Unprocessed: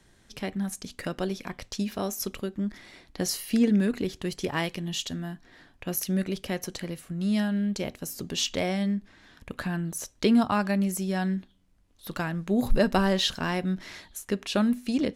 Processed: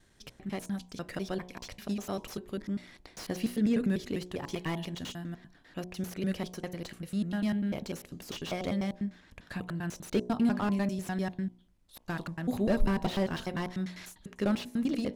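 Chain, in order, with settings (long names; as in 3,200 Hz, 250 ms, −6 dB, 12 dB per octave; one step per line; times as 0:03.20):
slices reordered back to front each 99 ms, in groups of 2
hum removal 60.25 Hz, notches 18
slew-rate limiting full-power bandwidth 62 Hz
level −4 dB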